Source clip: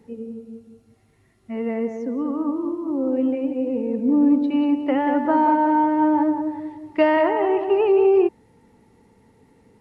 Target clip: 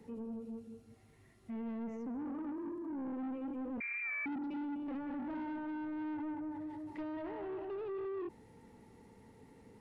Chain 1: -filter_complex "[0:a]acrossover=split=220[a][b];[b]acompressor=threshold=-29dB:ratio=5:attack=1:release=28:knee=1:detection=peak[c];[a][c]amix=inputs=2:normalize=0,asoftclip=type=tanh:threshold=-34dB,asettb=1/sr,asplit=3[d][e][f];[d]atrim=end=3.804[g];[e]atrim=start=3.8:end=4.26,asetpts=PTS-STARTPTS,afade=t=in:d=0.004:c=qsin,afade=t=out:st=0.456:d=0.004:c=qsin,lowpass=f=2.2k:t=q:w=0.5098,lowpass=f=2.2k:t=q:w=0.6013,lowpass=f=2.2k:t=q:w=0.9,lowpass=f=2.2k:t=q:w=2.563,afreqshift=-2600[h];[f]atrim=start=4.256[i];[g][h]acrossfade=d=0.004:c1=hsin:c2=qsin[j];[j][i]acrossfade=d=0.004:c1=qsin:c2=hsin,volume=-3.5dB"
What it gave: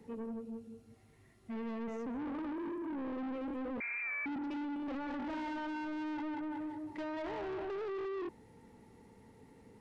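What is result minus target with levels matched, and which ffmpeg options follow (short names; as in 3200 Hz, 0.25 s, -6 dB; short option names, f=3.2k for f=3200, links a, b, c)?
compressor: peak gain reduction -9 dB
-filter_complex "[0:a]acrossover=split=220[a][b];[b]acompressor=threshold=-40dB:ratio=5:attack=1:release=28:knee=1:detection=peak[c];[a][c]amix=inputs=2:normalize=0,asoftclip=type=tanh:threshold=-34dB,asettb=1/sr,asplit=3[d][e][f];[d]atrim=end=3.804[g];[e]atrim=start=3.8:end=4.26,asetpts=PTS-STARTPTS,afade=t=in:d=0.004:c=qsin,afade=t=out:st=0.456:d=0.004:c=qsin,lowpass=f=2.2k:t=q:w=0.5098,lowpass=f=2.2k:t=q:w=0.6013,lowpass=f=2.2k:t=q:w=0.9,lowpass=f=2.2k:t=q:w=2.563,afreqshift=-2600[h];[f]atrim=start=4.256[i];[g][h]acrossfade=d=0.004:c1=hsin:c2=qsin[j];[j][i]acrossfade=d=0.004:c1=qsin:c2=hsin,volume=-3.5dB"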